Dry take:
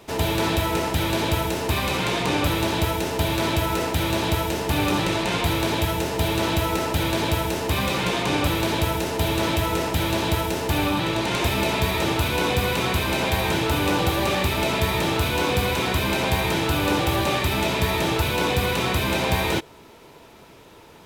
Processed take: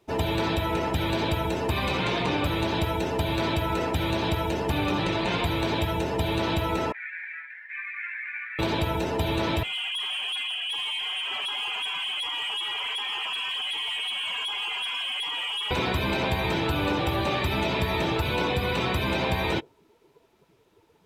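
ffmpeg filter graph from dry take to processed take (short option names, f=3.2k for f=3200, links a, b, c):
-filter_complex "[0:a]asettb=1/sr,asplit=3[a][b][c];[a]atrim=end=6.924[d];[b]atrim=start=6.92:end=8.59,asetpts=PTS-STARTPTS,afade=t=in:d=0.004:c=qsin,afade=t=out:st=1.666:d=0.004:c=qsin,asuperpass=centerf=1900:order=4:qfactor=2.7,asplit=2[e][f];[f]adelay=17,volume=-6dB[g];[e][g]amix=inputs=2:normalize=0,atrim=end_sample=73647[h];[c]atrim=start=8.586[i];[d][h]acrossfade=d=0.004:c1=hsin:c2=qsin[j];[j][i]acrossfade=d=0.004:c1=qsin:c2=hsin,asettb=1/sr,asplit=3[k][l][m];[k]atrim=end=9.634[n];[l]atrim=start=9.63:end=15.71,asetpts=PTS-STARTPTS,afade=t=in:d=0.004:c=qsin,afade=t=out:st=6.076:d=0.004:c=qsin,lowpass=f=2.9k:t=q:w=0.5098,lowpass=f=2.9k:t=q:w=0.6013,lowpass=f=2.9k:t=q:w=0.9,lowpass=f=2.9k:t=q:w=2.563,afreqshift=-3400,highpass=180,volume=28dB,asoftclip=hard,volume=-28dB[o];[m]atrim=start=15.706[p];[n][o]acrossfade=d=0.004:c1=hsin:c2=qsin[q];[q][p]acrossfade=d=0.004:c1=qsin:c2=hsin,afftdn=nr=18:nf=-34,acompressor=threshold=-22dB:ratio=6"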